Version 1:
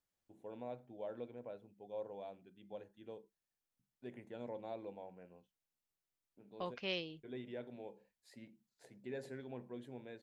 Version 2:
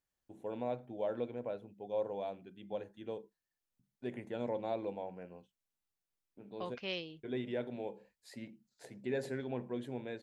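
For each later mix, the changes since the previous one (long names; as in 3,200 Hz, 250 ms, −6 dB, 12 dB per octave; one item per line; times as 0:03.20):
first voice +8.5 dB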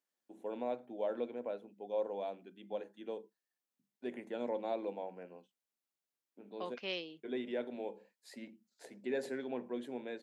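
master: add high-pass filter 210 Hz 24 dB per octave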